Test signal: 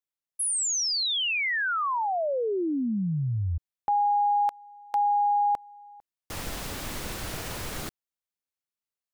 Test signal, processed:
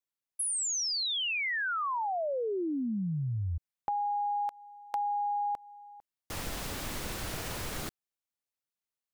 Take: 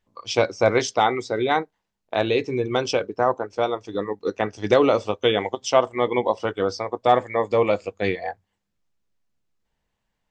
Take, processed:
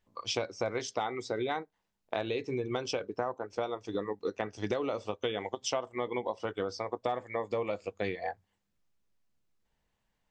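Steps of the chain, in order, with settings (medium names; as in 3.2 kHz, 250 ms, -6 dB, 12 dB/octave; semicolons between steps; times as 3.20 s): compression 6:1, threshold -28 dBFS; trim -2 dB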